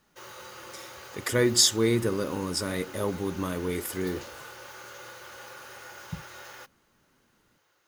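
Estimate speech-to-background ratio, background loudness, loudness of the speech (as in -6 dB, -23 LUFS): 17.5 dB, -44.0 LUFS, -26.5 LUFS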